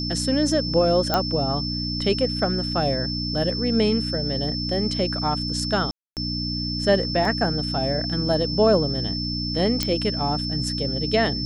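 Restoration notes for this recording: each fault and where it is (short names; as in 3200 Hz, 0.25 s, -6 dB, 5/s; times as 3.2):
hum 60 Hz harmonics 5 -29 dBFS
tone 5300 Hz -28 dBFS
1.14 pop -6 dBFS
5.91–6.17 gap 0.258 s
7.25 gap 2.8 ms
9.83 pop -7 dBFS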